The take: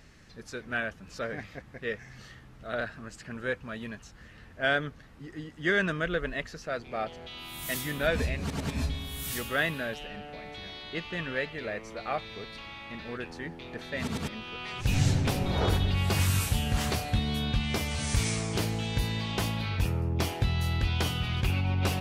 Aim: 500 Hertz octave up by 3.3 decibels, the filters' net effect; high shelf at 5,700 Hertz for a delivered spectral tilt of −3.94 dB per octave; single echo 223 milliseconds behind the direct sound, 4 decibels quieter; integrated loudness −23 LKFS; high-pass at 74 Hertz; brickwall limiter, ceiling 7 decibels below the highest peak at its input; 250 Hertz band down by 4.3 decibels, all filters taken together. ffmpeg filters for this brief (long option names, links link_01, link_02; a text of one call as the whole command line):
ffmpeg -i in.wav -af "highpass=74,equalizer=frequency=250:width_type=o:gain=-8,equalizer=frequency=500:width_type=o:gain=6,highshelf=frequency=5700:gain=6.5,alimiter=limit=-19dB:level=0:latency=1,aecho=1:1:223:0.631,volume=8dB" out.wav